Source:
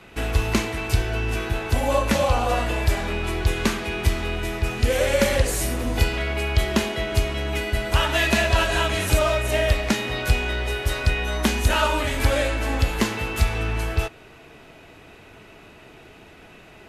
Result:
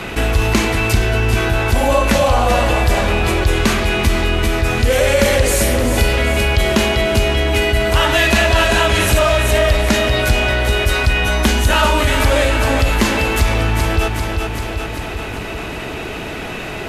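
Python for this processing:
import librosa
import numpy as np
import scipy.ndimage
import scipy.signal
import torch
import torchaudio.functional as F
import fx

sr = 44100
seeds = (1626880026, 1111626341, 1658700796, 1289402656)

y = fx.echo_feedback(x, sr, ms=392, feedback_pct=51, wet_db=-9.0)
y = fx.env_flatten(y, sr, amount_pct=50)
y = y * librosa.db_to_amplitude(3.5)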